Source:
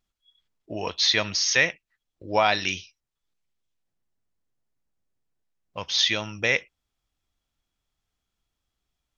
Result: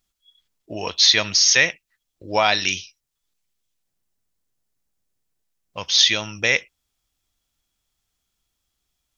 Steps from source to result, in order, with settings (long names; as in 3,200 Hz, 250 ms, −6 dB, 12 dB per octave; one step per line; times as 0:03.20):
high-shelf EQ 3,900 Hz +10.5 dB
level +1.5 dB